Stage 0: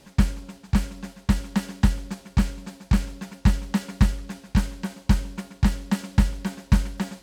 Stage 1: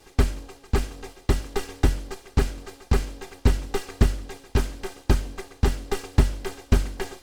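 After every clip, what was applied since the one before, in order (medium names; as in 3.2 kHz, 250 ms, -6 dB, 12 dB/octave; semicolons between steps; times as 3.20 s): comb filter that takes the minimum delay 2.5 ms; trim +1 dB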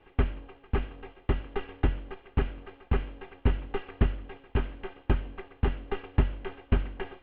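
elliptic low-pass 3 kHz, stop band 60 dB; trim -4.5 dB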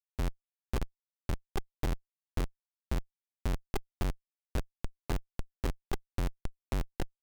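Schmitt trigger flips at -27.5 dBFS; trim +1 dB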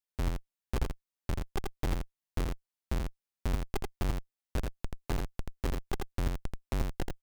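delay 83 ms -3.5 dB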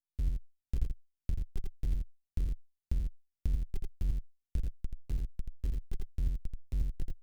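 recorder AGC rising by 17 dB/s; amplifier tone stack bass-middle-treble 10-0-1; trim +6.5 dB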